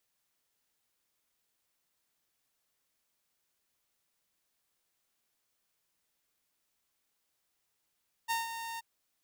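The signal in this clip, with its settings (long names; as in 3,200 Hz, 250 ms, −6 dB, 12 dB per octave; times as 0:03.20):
note with an ADSR envelope saw 917 Hz, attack 28 ms, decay 158 ms, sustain −9.5 dB, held 0.51 s, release 21 ms −26 dBFS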